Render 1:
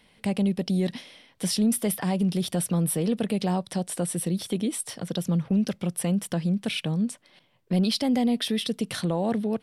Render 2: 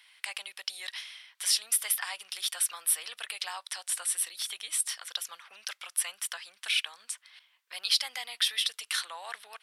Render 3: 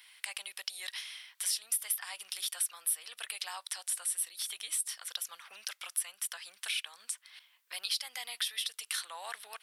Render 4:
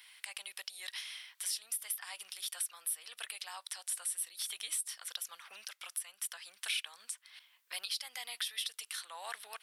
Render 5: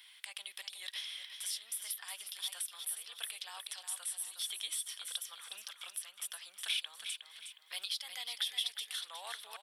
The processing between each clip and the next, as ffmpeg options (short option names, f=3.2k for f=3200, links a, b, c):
-af "highpass=f=1.2k:w=0.5412,highpass=f=1.2k:w=1.3066,volume=3.5dB"
-af "highshelf=f=9k:g=11,acompressor=threshold=-38dB:ratio=2"
-af "alimiter=limit=-24dB:level=0:latency=1:release=451"
-filter_complex "[0:a]equalizer=f=3.4k:t=o:w=0.24:g=9,asplit=2[a][b];[b]aecho=0:1:363|726|1089|1452:0.398|0.143|0.0516|0.0186[c];[a][c]amix=inputs=2:normalize=0,volume=-3dB"